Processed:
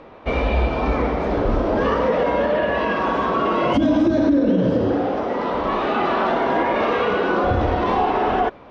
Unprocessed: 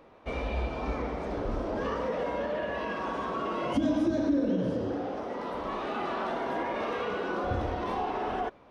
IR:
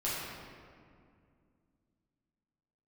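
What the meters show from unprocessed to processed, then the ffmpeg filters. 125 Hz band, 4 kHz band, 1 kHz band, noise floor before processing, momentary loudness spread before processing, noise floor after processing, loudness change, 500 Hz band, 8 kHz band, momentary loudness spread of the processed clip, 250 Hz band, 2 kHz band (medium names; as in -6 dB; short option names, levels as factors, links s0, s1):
+12.0 dB, +11.0 dB, +12.5 dB, -55 dBFS, 7 LU, -42 dBFS, +11.5 dB, +12.0 dB, no reading, 5 LU, +11.0 dB, +12.5 dB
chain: -af "lowpass=4500,alimiter=level_in=11.2:limit=0.891:release=50:level=0:latency=1,volume=0.376"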